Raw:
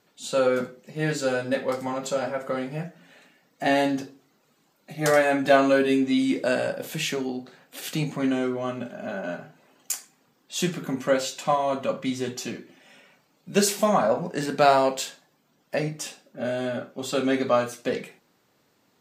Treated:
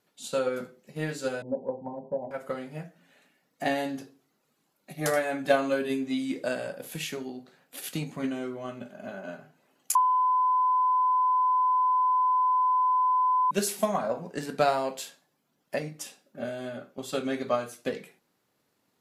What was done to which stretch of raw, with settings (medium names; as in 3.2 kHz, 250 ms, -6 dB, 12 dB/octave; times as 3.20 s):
1.42–2.31 s: Chebyshev low-pass 1 kHz, order 8
9.95–13.51 s: bleep 1.01 kHz -12 dBFS
whole clip: peaking EQ 11 kHz +13.5 dB 0.23 oct; transient shaper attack +6 dB, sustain 0 dB; trim -8.5 dB